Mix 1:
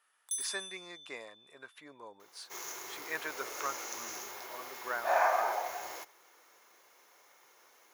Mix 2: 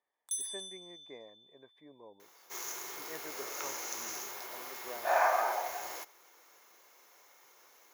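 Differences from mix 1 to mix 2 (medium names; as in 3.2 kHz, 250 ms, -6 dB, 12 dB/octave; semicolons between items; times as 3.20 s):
speech: add boxcar filter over 32 samples; second sound: add treble shelf 6.6 kHz +4.5 dB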